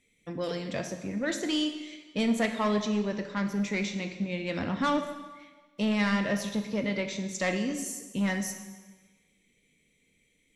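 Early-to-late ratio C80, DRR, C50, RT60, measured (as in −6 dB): 9.5 dB, 6.0 dB, 8.0 dB, 1.3 s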